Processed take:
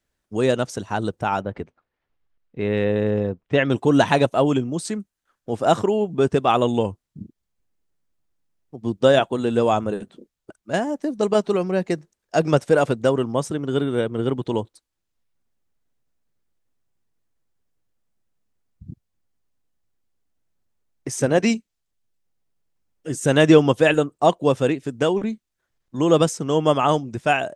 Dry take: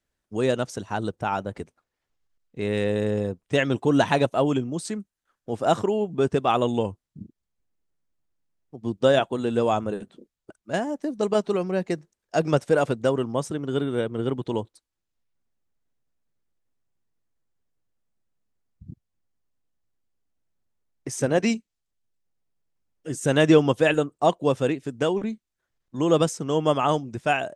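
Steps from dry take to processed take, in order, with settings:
0:01.41–0:03.70: low-pass filter 3,000 Hz 12 dB per octave
level +3.5 dB

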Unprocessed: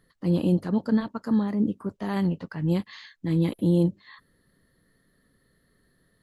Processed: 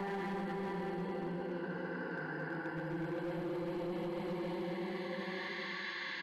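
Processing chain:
parametric band 1,100 Hz −3.5 dB 0.56 octaves
extreme stretch with random phases 6.9×, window 0.50 s, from 0:02.16
three-way crossover with the lows and the highs turned down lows −21 dB, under 360 Hz, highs −13 dB, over 2,200 Hz
notch comb filter 630 Hz
on a send: repeating echo 455 ms, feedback 46%, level −16.5 dB
on the sum: brickwall limiter −29.5 dBFS, peak gain reduction 6 dB
notch filter 600 Hz, Q 12
gain into a clipping stage and back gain 35.5 dB
reversed playback
downward compressor 6 to 1, threshold −54 dBFS, peak gain reduction 15 dB
reversed playback
level +15.5 dB

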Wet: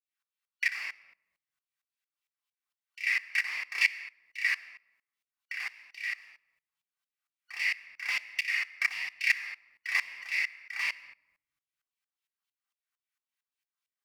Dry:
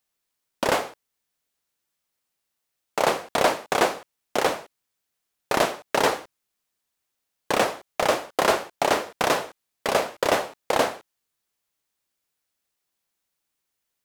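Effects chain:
band-splitting scrambler in four parts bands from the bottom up 3142
high-pass filter 120 Hz 24 dB per octave
low-shelf EQ 200 Hz +6.5 dB
0:05.53–0:06.18: downward compressor 3 to 1, threshold −28 dBFS, peak gain reduction 10 dB
bass and treble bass +7 dB, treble −3 dB
mains-hum notches 50/100/150/200 Hz
auto-filter high-pass saw down 3.7 Hz 940–3,100 Hz
rectangular room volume 1,900 cubic metres, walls furnished, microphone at 3.6 metres
tremolo with a ramp in dB swelling 4.4 Hz, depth 20 dB
level −8.5 dB

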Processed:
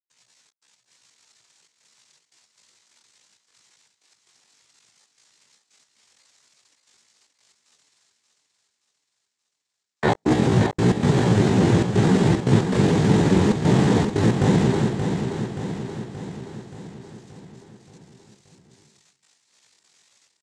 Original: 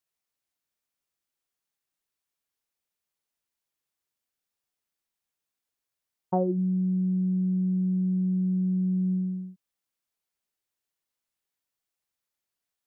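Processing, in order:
sub-harmonics by changed cycles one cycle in 2, muted
noise gate −33 dBFS, range −29 dB
mains-hum notches 50/100/150/200/250/300/350/400/450/500 Hz
leveller curve on the samples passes 2
reversed playback
upward compression, threshold −27 dBFS
reversed playback
cochlear-implant simulation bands 6
gate pattern ".xxx.x.xxxxxx" 183 BPM −60 dB
tempo change 0.63×
repeating echo 577 ms, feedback 57%, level −7 dB
level +7 dB

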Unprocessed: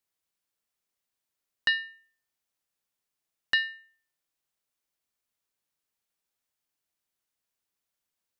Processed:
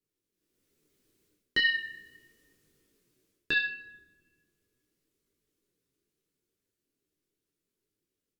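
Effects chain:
source passing by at 0:01.85, 26 m/s, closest 14 metres
automatic gain control gain up to 12 dB
low shelf with overshoot 540 Hz +11.5 dB, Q 3
reversed playback
downward compressor 8 to 1, threshold −29 dBFS, peak gain reduction 17.5 dB
reversed playback
rectangular room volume 1,600 cubic metres, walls mixed, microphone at 0.4 metres
micro pitch shift up and down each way 13 cents
level +9 dB

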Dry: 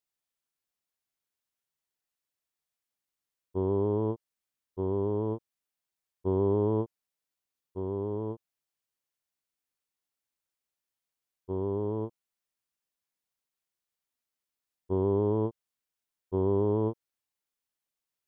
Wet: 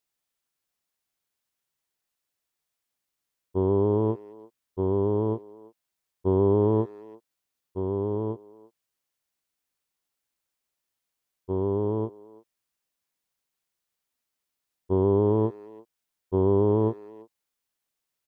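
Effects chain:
far-end echo of a speakerphone 340 ms, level −20 dB
level +5 dB

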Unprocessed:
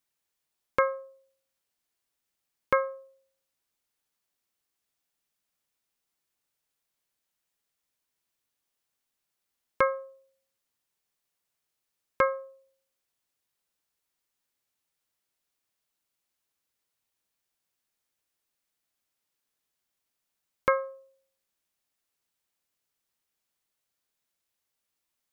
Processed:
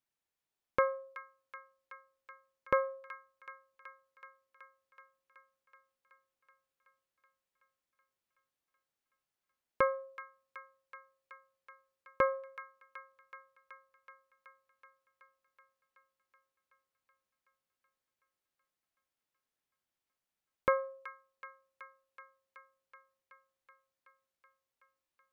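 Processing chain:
high-shelf EQ 3,600 Hz −8.5 dB
delay with a high-pass on its return 376 ms, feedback 76%, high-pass 1,600 Hz, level −10 dB
level −4 dB

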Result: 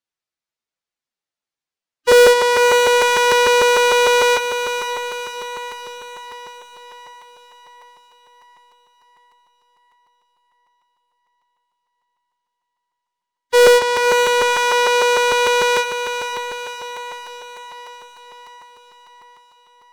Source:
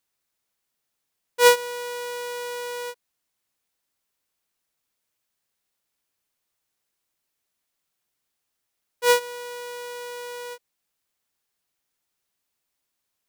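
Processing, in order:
low-pass filter 6,300 Hz 12 dB per octave
low-shelf EQ 230 Hz −3 dB
in parallel at −1 dB: downward compressor, threshold −31 dBFS, peak gain reduction 18.5 dB
on the sum: leveller curve on the samples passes 5
phase-vocoder stretch with locked phases 1.5×
on a send: feedback delay with all-pass diffusion 537 ms, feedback 58%, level −8 dB
on the sum: regular buffer underruns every 0.15 s, samples 256, repeat, from 0:00.76
level −2.5 dB

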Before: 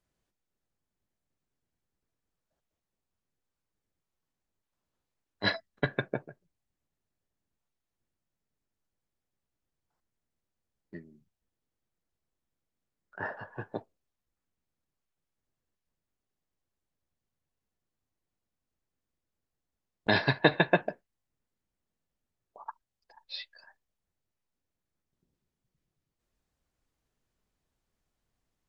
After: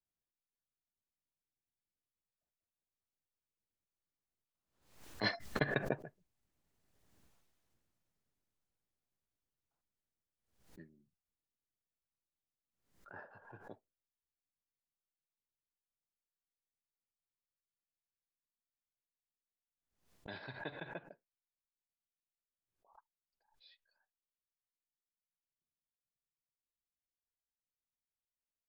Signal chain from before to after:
source passing by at 0:07.21, 13 m/s, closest 1.8 metres
background raised ahead of every attack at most 100 dB per second
level +16.5 dB

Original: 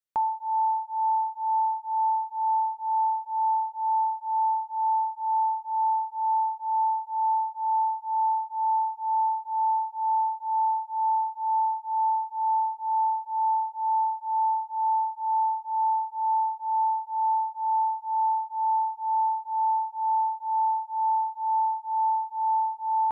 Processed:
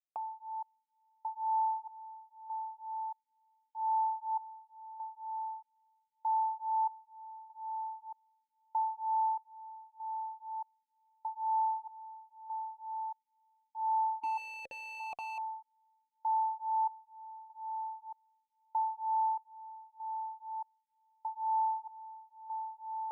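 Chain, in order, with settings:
0:14.23–0:15.38: comparator with hysteresis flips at −34.5 dBFS
formant filter that steps through the vowels 1.6 Hz

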